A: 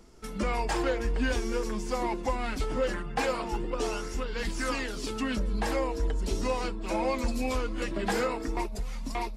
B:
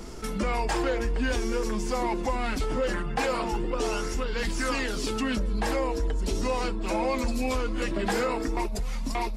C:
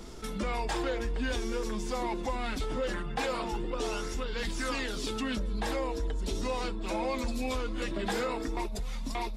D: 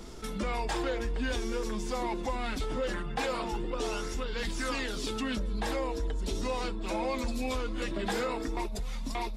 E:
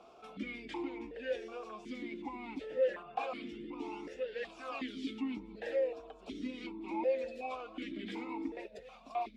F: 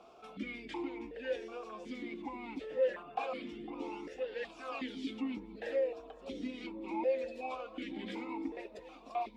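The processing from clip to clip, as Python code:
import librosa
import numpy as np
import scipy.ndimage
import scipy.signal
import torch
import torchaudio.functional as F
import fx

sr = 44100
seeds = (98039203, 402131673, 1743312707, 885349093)

y1 = fx.env_flatten(x, sr, amount_pct=50)
y2 = fx.peak_eq(y1, sr, hz=3600.0, db=7.5, octaves=0.26)
y2 = y2 * librosa.db_to_amplitude(-5.0)
y3 = y2
y4 = fx.vowel_held(y3, sr, hz=2.7)
y4 = y4 * librosa.db_to_amplitude(4.5)
y5 = fx.echo_wet_bandpass(y4, sr, ms=504, feedback_pct=50, hz=590.0, wet_db=-17.0)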